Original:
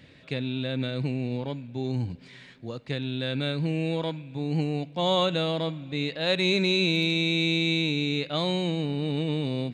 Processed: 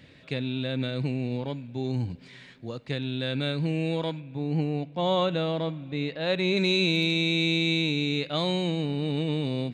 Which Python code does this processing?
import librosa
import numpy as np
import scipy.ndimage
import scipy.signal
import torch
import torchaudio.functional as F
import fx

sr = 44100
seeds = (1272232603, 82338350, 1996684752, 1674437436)

y = fx.high_shelf(x, sr, hz=4000.0, db=-12.0, at=(4.2, 6.57))